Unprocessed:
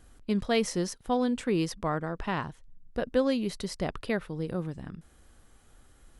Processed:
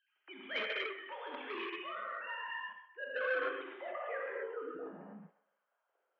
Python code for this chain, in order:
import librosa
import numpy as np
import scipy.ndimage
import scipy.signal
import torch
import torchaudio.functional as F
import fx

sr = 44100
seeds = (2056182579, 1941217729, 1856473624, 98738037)

p1 = fx.sine_speech(x, sr)
p2 = fx.rev_gated(p1, sr, seeds[0], gate_ms=310, shape='flat', drr_db=-6.0)
p3 = fx.level_steps(p2, sr, step_db=21)
p4 = p2 + F.gain(torch.from_numpy(p3), 2.0).numpy()
p5 = 10.0 ** (-12.5 / 20.0) * np.tanh(p4 / 10.0 ** (-12.5 / 20.0))
p6 = fx.dynamic_eq(p5, sr, hz=1200.0, q=0.86, threshold_db=-34.0, ratio=4.0, max_db=4)
p7 = p6 + fx.echo_wet_bandpass(p6, sr, ms=129, feedback_pct=32, hz=1200.0, wet_db=-11, dry=0)
p8 = fx.filter_sweep_bandpass(p7, sr, from_hz=2600.0, to_hz=510.0, start_s=2.74, end_s=5.33, q=1.5)
y = F.gain(torch.from_numpy(p8), -8.0).numpy()